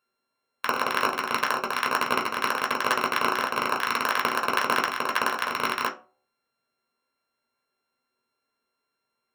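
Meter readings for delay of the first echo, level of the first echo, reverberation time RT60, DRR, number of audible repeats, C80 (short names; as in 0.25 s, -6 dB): none, none, 0.40 s, -0.5 dB, none, 18.0 dB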